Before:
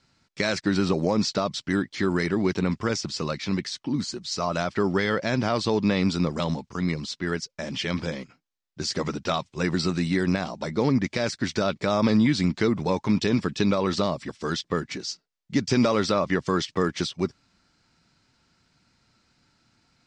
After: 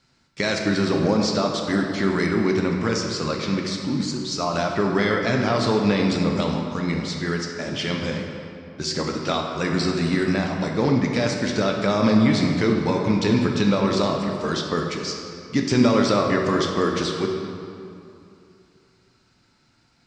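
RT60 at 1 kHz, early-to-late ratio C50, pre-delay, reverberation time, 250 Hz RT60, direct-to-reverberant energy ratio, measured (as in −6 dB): 2.6 s, 2.5 dB, 7 ms, 2.6 s, 2.7 s, 1.0 dB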